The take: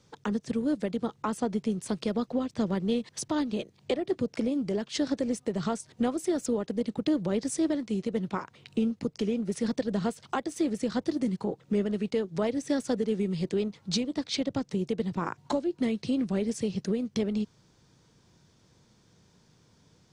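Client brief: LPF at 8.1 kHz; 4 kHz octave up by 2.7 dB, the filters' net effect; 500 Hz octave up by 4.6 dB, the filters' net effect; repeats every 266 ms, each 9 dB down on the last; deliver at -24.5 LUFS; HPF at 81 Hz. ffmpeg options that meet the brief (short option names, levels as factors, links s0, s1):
-af "highpass=81,lowpass=8100,equalizer=f=500:t=o:g=5.5,equalizer=f=4000:t=o:g=3.5,aecho=1:1:266|532|798|1064:0.355|0.124|0.0435|0.0152,volume=1.41"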